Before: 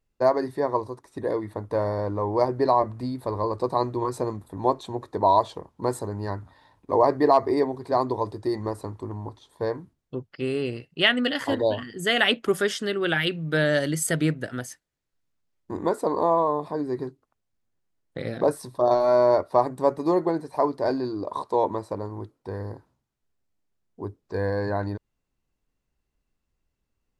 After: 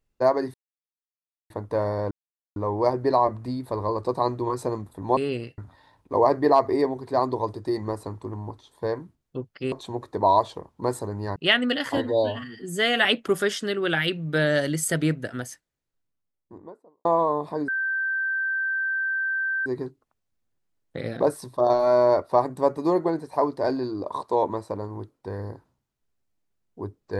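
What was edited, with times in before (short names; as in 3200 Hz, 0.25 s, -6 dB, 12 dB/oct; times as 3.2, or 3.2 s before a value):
0.54–1.5 mute
2.11 insert silence 0.45 s
4.72–6.36 swap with 10.5–10.91
11.52–12.24 stretch 1.5×
14.67–16.24 studio fade out
16.87 add tone 1560 Hz -23 dBFS 1.98 s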